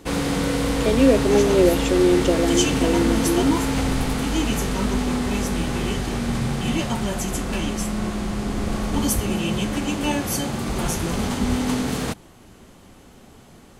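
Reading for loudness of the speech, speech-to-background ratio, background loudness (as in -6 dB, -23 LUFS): -20.5 LUFS, 3.0 dB, -23.5 LUFS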